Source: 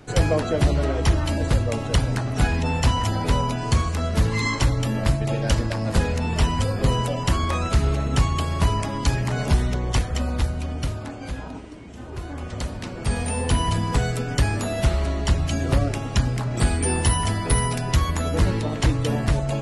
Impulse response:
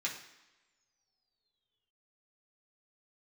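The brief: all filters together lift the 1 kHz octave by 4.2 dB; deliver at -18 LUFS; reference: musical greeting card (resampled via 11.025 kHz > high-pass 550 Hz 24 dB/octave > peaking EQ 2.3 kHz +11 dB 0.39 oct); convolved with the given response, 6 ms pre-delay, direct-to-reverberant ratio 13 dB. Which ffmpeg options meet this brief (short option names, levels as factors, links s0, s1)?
-filter_complex "[0:a]equalizer=f=1000:t=o:g=4.5,asplit=2[s0][s1];[1:a]atrim=start_sample=2205,adelay=6[s2];[s1][s2]afir=irnorm=-1:irlink=0,volume=0.158[s3];[s0][s3]amix=inputs=2:normalize=0,aresample=11025,aresample=44100,highpass=f=550:w=0.5412,highpass=f=550:w=1.3066,equalizer=f=2300:t=o:w=0.39:g=11,volume=2.37"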